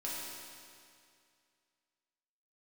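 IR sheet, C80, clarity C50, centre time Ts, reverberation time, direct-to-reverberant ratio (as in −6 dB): −0.5 dB, −2.0 dB, 141 ms, 2.3 s, −7.0 dB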